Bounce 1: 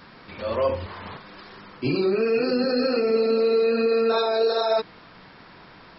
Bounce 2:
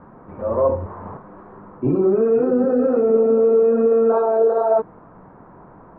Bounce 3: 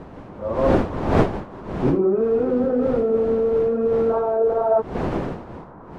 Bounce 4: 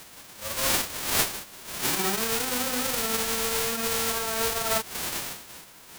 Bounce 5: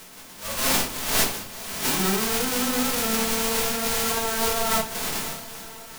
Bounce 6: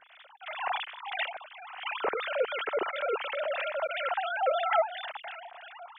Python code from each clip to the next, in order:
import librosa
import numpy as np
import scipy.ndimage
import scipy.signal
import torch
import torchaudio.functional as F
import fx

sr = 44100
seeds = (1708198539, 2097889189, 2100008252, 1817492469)

y1 = scipy.signal.sosfilt(scipy.signal.butter(4, 1100.0, 'lowpass', fs=sr, output='sos'), x)
y1 = y1 * 10.0 ** (5.5 / 20.0)
y2 = fx.dmg_wind(y1, sr, seeds[0], corner_hz=490.0, level_db=-26.0)
y2 = fx.rider(y2, sr, range_db=5, speed_s=0.5)
y2 = y2 * 10.0 ** (-2.5 / 20.0)
y3 = fx.envelope_flatten(y2, sr, power=0.1)
y3 = y3 * 10.0 ** (-8.0 / 20.0)
y4 = fx.echo_diffused(y3, sr, ms=488, feedback_pct=57, wet_db=-15.5)
y4 = fx.room_shoebox(y4, sr, seeds[1], volume_m3=180.0, walls='furnished', distance_m=1.5)
y5 = fx.sine_speech(y4, sr)
y5 = fx.harmonic_tremolo(y5, sr, hz=2.9, depth_pct=70, crossover_hz=1300.0)
y5 = y5 * 10.0 ** (-4.0 / 20.0)